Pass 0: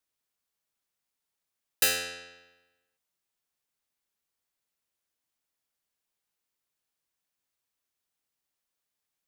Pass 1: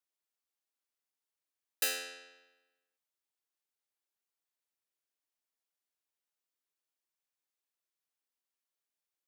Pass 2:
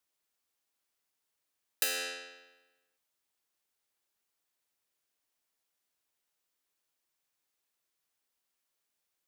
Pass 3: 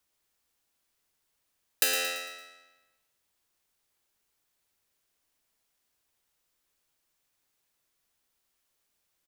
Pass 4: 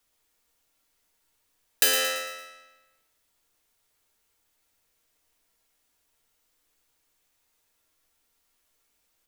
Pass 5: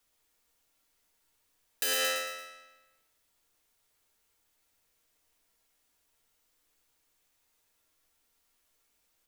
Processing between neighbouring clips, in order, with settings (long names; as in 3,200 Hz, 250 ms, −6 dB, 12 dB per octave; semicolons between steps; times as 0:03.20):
Butterworth high-pass 250 Hz 36 dB per octave; level −7.5 dB
downward compressor 6 to 1, threshold −35 dBFS, peak gain reduction 8.5 dB; level +7.5 dB
low-shelf EQ 130 Hz +9.5 dB; on a send: repeating echo 113 ms, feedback 46%, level −9 dB; on the sum: level +5 dB
parametric band 140 Hz −13 dB 0.23 octaves; on a send at −1.5 dB: convolution reverb RT60 0.40 s, pre-delay 4 ms; on the sum: level +3 dB
brickwall limiter −18 dBFS, peak gain reduction 10.5 dB; level −1.5 dB